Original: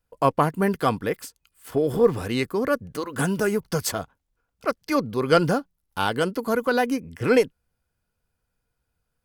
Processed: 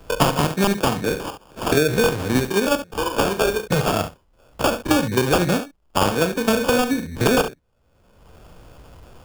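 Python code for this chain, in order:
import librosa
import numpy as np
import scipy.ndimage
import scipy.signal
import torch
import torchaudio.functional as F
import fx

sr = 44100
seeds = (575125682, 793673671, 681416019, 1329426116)

p1 = fx.spec_steps(x, sr, hold_ms=50)
p2 = fx.level_steps(p1, sr, step_db=12)
p3 = p1 + (p2 * librosa.db_to_amplitude(2.5))
p4 = fx.highpass(p3, sr, hz=530.0, slope=12, at=(2.76, 3.67))
p5 = fx.sample_hold(p4, sr, seeds[0], rate_hz=2000.0, jitter_pct=0)
p6 = (np.mod(10.0 ** (7.5 / 20.0) * p5 + 1.0, 2.0) - 1.0) / 10.0 ** (7.5 / 20.0)
p7 = p6 + fx.room_early_taps(p6, sr, ms=(40, 69), db=(-11.5, -13.0), dry=0)
p8 = fx.band_squash(p7, sr, depth_pct=100)
y = p8 * librosa.db_to_amplitude(-1.0)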